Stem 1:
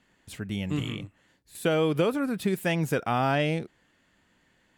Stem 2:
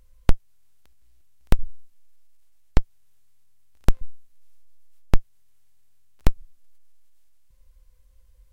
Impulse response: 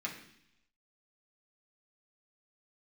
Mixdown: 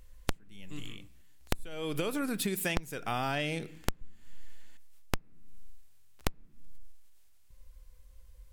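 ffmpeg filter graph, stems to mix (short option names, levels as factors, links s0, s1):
-filter_complex "[0:a]highshelf=f=2900:g=12,volume=0.708,afade=t=in:st=1.49:d=0.69:silence=0.223872,asplit=2[s0][s1];[s1]volume=0.178[s2];[1:a]volume=1.26,asplit=2[s3][s4];[s4]volume=0.0944[s5];[2:a]atrim=start_sample=2205[s6];[s2][s5]amix=inputs=2:normalize=0[s7];[s7][s6]afir=irnorm=-1:irlink=0[s8];[s0][s3][s8]amix=inputs=3:normalize=0,acompressor=threshold=0.0398:ratio=10"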